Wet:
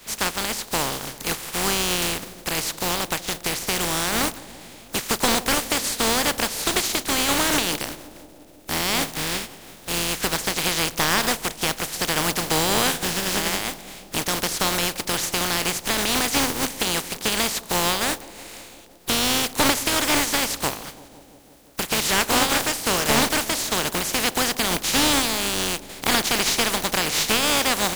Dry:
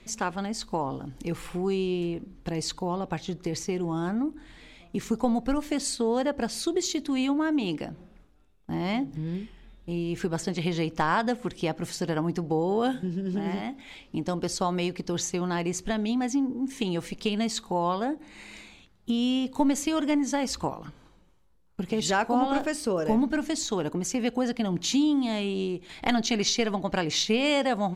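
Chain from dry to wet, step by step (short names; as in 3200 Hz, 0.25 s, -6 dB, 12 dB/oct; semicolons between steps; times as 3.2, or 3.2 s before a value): spectral contrast lowered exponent 0.25; analogue delay 0.168 s, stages 1024, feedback 77%, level -18 dB; slew limiter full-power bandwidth 380 Hz; gain +5.5 dB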